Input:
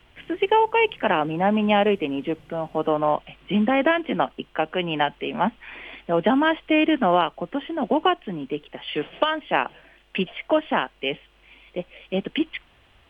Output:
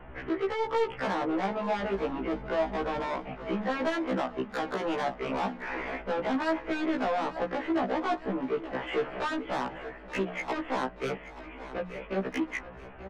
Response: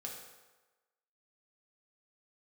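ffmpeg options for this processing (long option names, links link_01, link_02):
-filter_complex "[0:a]lowpass=frequency=1700:width=0.5412,lowpass=frequency=1700:width=1.3066,equalizer=frequency=500:width_type=o:width=0.77:gain=2.5,bandreject=frequency=60:width_type=h:width=6,bandreject=frequency=120:width_type=h:width=6,bandreject=frequency=180:width_type=h:width=6,bandreject=frequency=240:width_type=h:width=6,bandreject=frequency=300:width_type=h:width=6,bandreject=frequency=360:width_type=h:width=6,asplit=2[link_01][link_02];[link_02]acompressor=threshold=-27dB:ratio=6,volume=-2.5dB[link_03];[link_01][link_03]amix=inputs=2:normalize=0,alimiter=limit=-15dB:level=0:latency=1:release=16,acrossover=split=260|600[link_04][link_05][link_06];[link_04]acompressor=threshold=-42dB:ratio=4[link_07];[link_05]acompressor=threshold=-36dB:ratio=4[link_08];[link_06]acompressor=threshold=-29dB:ratio=4[link_09];[link_07][link_08][link_09]amix=inputs=3:normalize=0,asettb=1/sr,asplit=3[link_10][link_11][link_12];[link_10]atrim=end=1.784[link_13];[link_11]atrim=start=1.78:end=3.06,asetpts=PTS-STARTPTS,afade=type=in:duration=0.004:curve=qsin,afade=type=out:start_time=1.276:duration=0.004:curve=qsin,aeval=exprs='val(0)+0.00631*(sin(2*PI*50*n/s)+sin(2*PI*2*50*n/s)/2+sin(2*PI*3*50*n/s)/3+sin(2*PI*4*50*n/s)/4+sin(2*PI*5*50*n/s)/5)':channel_layout=same[link_14];[link_12]atrim=start=3.056[link_15];[link_13][link_14]acrossfade=duration=0.004:curve1=hsin:curve2=qsin[link_16];[link_16][link_15]acrossfade=duration=0.004:curve1=qsin:curve2=hsin,asoftclip=type=tanh:threshold=-32dB,asplit=2[link_17][link_18];[link_18]aecho=0:1:880|1760|2640|3520|4400:0.188|0.0923|0.0452|0.0222|0.0109[link_19];[link_17][link_19]amix=inputs=2:normalize=0,afftfilt=real='re*1.73*eq(mod(b,3),0)':imag='im*1.73*eq(mod(b,3),0)':win_size=2048:overlap=0.75,volume=8.5dB"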